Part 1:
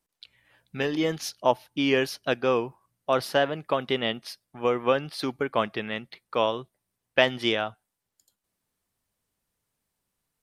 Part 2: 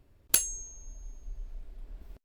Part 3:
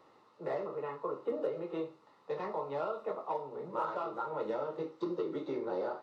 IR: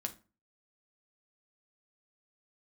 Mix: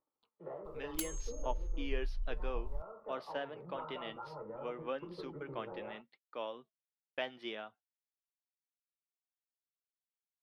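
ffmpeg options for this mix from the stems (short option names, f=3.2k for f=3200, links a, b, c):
-filter_complex "[0:a]acrossover=split=190 4700:gain=0.0794 1 0.158[a][b][c];[a][b][c]amix=inputs=3:normalize=0,volume=-13dB[d];[1:a]adelay=650,volume=0dB[e];[2:a]lowpass=f=1.5k:w=0.5412,lowpass=f=1.5k:w=1.3066,acompressor=mode=upward:threshold=-51dB:ratio=2.5,volume=-3.5dB[f];[e][f]amix=inputs=2:normalize=0,asubboost=boost=9:cutoff=97,acompressor=threshold=-37dB:ratio=2.5,volume=0dB[g];[d][g]amix=inputs=2:normalize=0,agate=range=-30dB:threshold=-57dB:ratio=16:detection=peak,lowshelf=f=160:g=4.5,flanger=delay=3.3:depth=3.3:regen=69:speed=0.63:shape=sinusoidal"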